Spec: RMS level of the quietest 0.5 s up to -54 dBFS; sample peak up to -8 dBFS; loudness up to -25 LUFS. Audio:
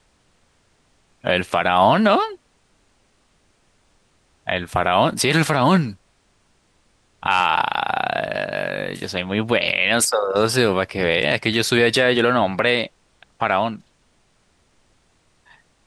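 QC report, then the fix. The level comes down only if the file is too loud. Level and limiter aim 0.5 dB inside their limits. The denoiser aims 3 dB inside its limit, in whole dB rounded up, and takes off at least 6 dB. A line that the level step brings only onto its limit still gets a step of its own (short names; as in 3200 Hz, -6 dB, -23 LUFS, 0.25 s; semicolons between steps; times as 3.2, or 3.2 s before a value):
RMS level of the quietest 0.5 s -61 dBFS: OK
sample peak -4.5 dBFS: fail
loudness -19.0 LUFS: fail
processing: gain -6.5 dB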